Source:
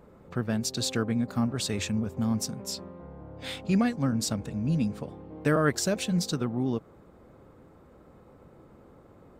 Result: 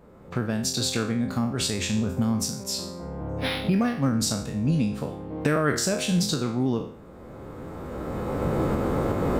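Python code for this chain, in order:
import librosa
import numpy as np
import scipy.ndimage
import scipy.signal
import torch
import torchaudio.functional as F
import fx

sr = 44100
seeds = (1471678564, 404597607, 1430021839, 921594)

y = fx.spec_trails(x, sr, decay_s=0.48)
y = fx.recorder_agc(y, sr, target_db=-15.0, rise_db_per_s=14.0, max_gain_db=30)
y = fx.resample_linear(y, sr, factor=6, at=(3.29, 4.13))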